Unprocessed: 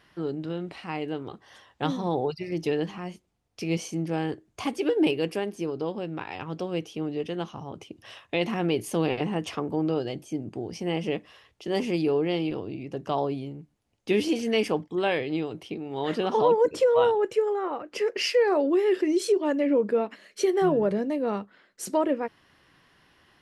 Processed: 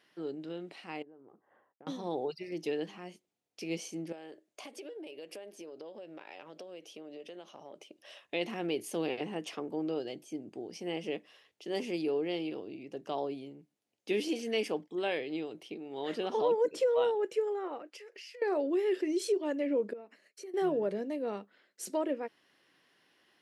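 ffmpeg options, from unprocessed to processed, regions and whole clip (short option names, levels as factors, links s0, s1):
-filter_complex "[0:a]asettb=1/sr,asplit=3[s0][s1][s2];[s0]atrim=end=1.024[s3];[s1]atrim=start=1.02:end=1.87,asetpts=PTS-STARTPTS,afade=t=in:d=0.004:c=qsin,afade=t=out:st=0.846:d=0.004:c=qsin,agate=range=0.0224:threshold=0.00251:ratio=3:release=100:detection=peak,lowpass=f=1400:w=0.5412,lowpass=f=1400:w=1.3066,acompressor=threshold=0.00631:ratio=10:attack=3.2:release=140:knee=1:detection=peak[s4];[s2]atrim=start=1.866[s5];[s3][s4]acrossfade=d=0.004:c1=hsin:c2=qsin[s6];[s6][s5]acrossfade=d=0.004:c1=qsin:c2=hsin,asettb=1/sr,asplit=3[s7][s8][s9];[s7]atrim=end=4.124[s10];[s8]atrim=start=4.12:end=8.21,asetpts=PTS-STARTPTS,afade=t=in:d=0.004:c=qsin,afade=t=out:st=4.086:d=0.004:c=qsin,highpass=f=370:p=1,equalizer=f=590:t=o:w=0.26:g=10.5,acompressor=threshold=0.02:ratio=12:attack=3.2:release=140:knee=1:detection=peak[s11];[s9]atrim=start=8.206[s12];[s10][s11]acrossfade=d=0.004:c1=hsin:c2=qsin[s13];[s13][s12]acrossfade=d=0.004:c1=qsin:c2=hsin,asettb=1/sr,asplit=3[s14][s15][s16];[s14]atrim=end=17.904[s17];[s15]atrim=start=17.9:end=18.42,asetpts=PTS-STARTPTS,afade=t=in:d=0.004:c=qsin,afade=t=out:st=0.516:d=0.004:c=qsin,highpass=f=1300:p=1,acompressor=threshold=0.0112:ratio=16:attack=3.2:release=140:knee=1:detection=peak[s18];[s16]atrim=start=18.416[s19];[s17][s18]acrossfade=d=0.004:c1=hsin:c2=qsin[s20];[s20][s19]acrossfade=d=0.004:c1=qsin:c2=hsin,asettb=1/sr,asplit=3[s21][s22][s23];[s21]atrim=end=19.934[s24];[s22]atrim=start=19.93:end=20.54,asetpts=PTS-STARTPTS,afade=t=in:d=0.004:c=qsin,afade=t=out:st=0.606:d=0.004:c=qsin,agate=range=0.0224:threshold=0.00398:ratio=3:release=100:detection=peak,equalizer=f=3400:t=o:w=0.33:g=-11.5,acompressor=threshold=0.00398:ratio=2:attack=3.2:release=140:knee=1:detection=peak[s25];[s23]atrim=start=20.536[s26];[s24][s25]acrossfade=d=0.004:c1=hsin:c2=qsin[s27];[s27][s26]acrossfade=d=0.004:c1=qsin:c2=hsin,highpass=280,equalizer=f=1100:t=o:w=1.1:g=-6,volume=0.531"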